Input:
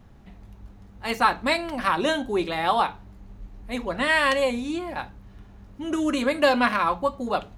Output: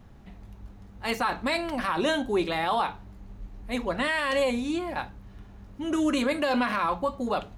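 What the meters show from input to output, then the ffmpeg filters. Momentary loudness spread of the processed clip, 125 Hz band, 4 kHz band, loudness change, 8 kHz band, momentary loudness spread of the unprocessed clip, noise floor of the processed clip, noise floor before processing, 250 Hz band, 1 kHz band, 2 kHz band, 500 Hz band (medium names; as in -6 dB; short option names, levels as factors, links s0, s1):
16 LU, -1.0 dB, -3.5 dB, -3.5 dB, -2.5 dB, 13 LU, -49 dBFS, -49 dBFS, -1.0 dB, -4.5 dB, -4.5 dB, -3.0 dB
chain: -af "alimiter=limit=0.141:level=0:latency=1:release=21"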